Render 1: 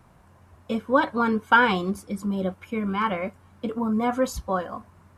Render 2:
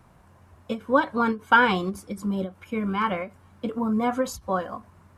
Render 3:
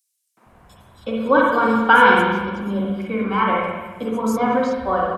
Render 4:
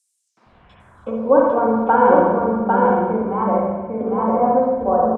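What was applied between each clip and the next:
ending taper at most 240 dB/s
three bands offset in time highs, mids, lows 0.37/0.46 s, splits 200/5100 Hz; spring tank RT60 1.3 s, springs 40/54/58 ms, chirp 55 ms, DRR -2.5 dB; gain +3 dB
low-pass sweep 8600 Hz -> 710 Hz, 0.18–1.31; on a send: echo 0.8 s -3 dB; on the sum: gain -1.5 dB

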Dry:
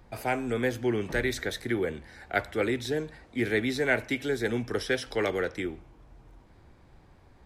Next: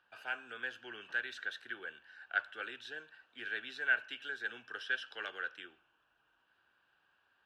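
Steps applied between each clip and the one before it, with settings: double band-pass 2100 Hz, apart 0.84 oct; gain +1 dB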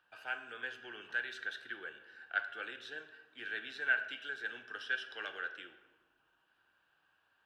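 shoebox room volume 780 m³, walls mixed, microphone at 0.54 m; gain -1 dB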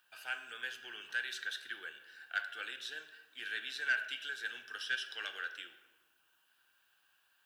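pre-emphasis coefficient 0.9; soft clip -34.5 dBFS, distortion -21 dB; gain +12.5 dB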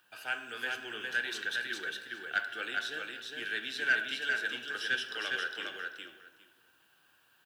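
bell 200 Hz +12 dB 3 oct; on a send: feedback echo 0.407 s, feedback 15%, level -3.5 dB; on the sum: gain +3 dB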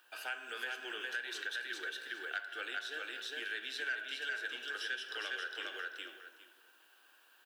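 HPF 320 Hz 24 dB/oct; compressor 3:1, threshold -41 dBFS, peak gain reduction 13 dB; gain +2 dB

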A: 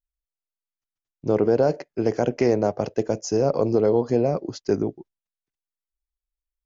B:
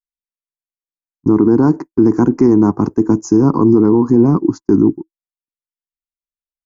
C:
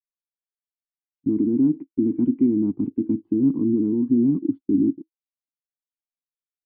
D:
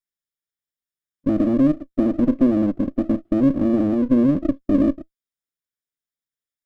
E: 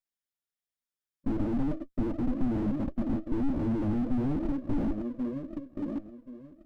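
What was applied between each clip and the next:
gate -36 dBFS, range -31 dB; EQ curve 130 Hz 0 dB, 320 Hz +9 dB, 580 Hz -25 dB, 1000 Hz +6 dB, 3000 Hz -28 dB, 7700 Hz -5 dB; maximiser +13.5 dB; gain -1 dB
vocal tract filter i; gain -4 dB
minimum comb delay 0.57 ms; gain +3 dB
flange 1.4 Hz, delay 0.9 ms, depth 8.9 ms, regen +23%; feedback echo 1.079 s, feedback 22%, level -13 dB; slew limiter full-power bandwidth 11 Hz

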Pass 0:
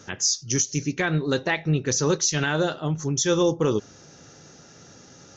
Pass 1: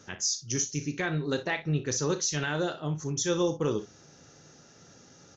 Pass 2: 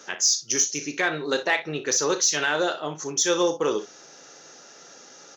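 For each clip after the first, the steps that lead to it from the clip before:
early reflections 34 ms -12 dB, 59 ms -13.5 dB; gain -6.5 dB
HPF 450 Hz 12 dB/oct; in parallel at -8 dB: soft clip -29 dBFS, distortion -11 dB; on the sum: gain +6.5 dB

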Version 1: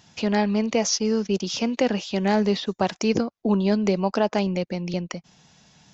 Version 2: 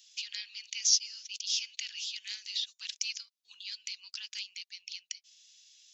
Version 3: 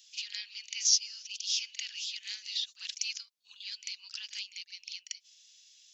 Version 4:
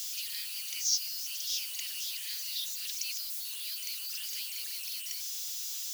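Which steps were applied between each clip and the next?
inverse Chebyshev high-pass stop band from 670 Hz, stop band 70 dB
pre-echo 44 ms -12.5 dB
switching spikes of -26.5 dBFS; gain -5 dB

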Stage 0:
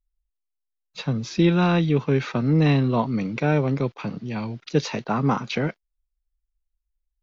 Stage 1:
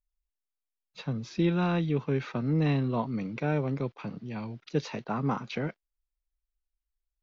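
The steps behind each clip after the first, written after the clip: high shelf 4800 Hz -6.5 dB; gain -7.5 dB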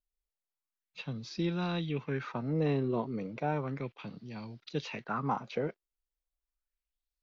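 LFO bell 0.34 Hz 380–5000 Hz +11 dB; gain -6.5 dB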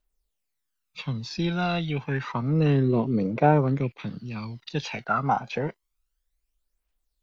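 phaser 0.29 Hz, delay 1.5 ms, feedback 56%; gain +7 dB

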